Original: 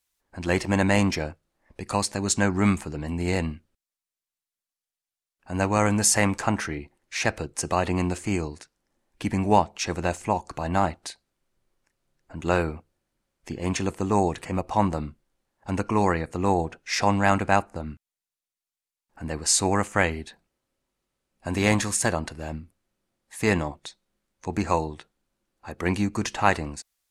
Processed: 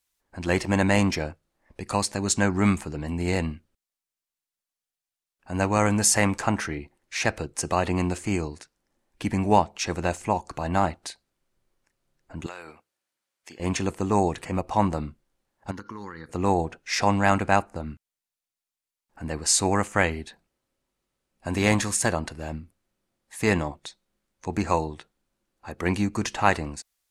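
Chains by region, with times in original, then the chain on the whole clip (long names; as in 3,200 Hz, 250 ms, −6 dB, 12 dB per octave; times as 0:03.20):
0:12.46–0:13.60: high-pass filter 1,500 Hz 6 dB per octave + downward compressor 5 to 1, threshold −35 dBFS
0:15.71–0:16.29: high-pass filter 250 Hz 6 dB per octave + phaser with its sweep stopped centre 2,500 Hz, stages 6 + downward compressor 12 to 1, threshold −33 dBFS
whole clip: no processing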